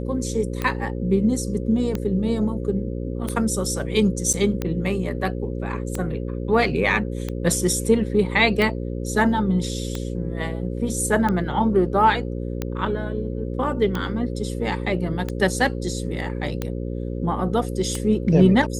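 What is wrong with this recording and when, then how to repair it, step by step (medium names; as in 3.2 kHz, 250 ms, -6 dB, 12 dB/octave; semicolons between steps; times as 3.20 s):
buzz 60 Hz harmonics 9 -28 dBFS
tick 45 rpm -12 dBFS
4.33–4.34 s: dropout 6.9 ms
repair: de-click; de-hum 60 Hz, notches 9; interpolate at 4.33 s, 6.9 ms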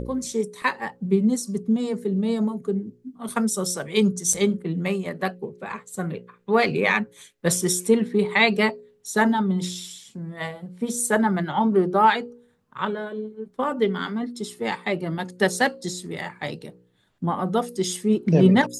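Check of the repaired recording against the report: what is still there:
nothing left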